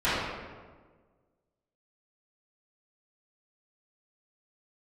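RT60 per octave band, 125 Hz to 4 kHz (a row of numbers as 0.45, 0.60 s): 1.7, 1.7, 1.6, 1.4, 1.1, 0.90 s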